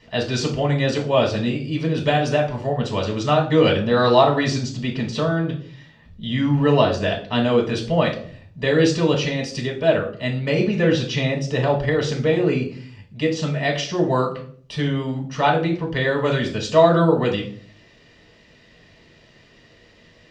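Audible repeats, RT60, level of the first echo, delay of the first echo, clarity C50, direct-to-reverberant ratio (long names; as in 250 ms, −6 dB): no echo audible, 0.50 s, no echo audible, no echo audible, 9.0 dB, −1.0 dB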